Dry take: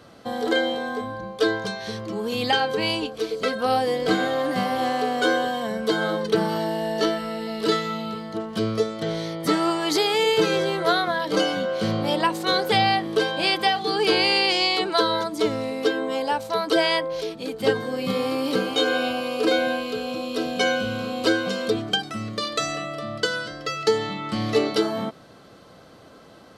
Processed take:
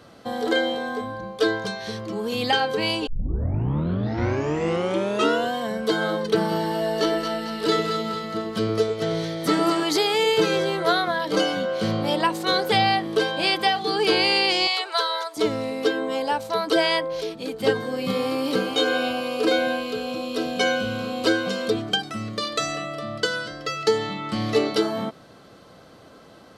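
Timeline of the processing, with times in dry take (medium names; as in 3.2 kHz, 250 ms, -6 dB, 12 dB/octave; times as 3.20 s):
3.07 s: tape start 2.48 s
6.41–9.83 s: two-band feedback delay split 770 Hz, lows 102 ms, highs 224 ms, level -6 dB
14.67–15.37 s: Bessel high-pass 790 Hz, order 6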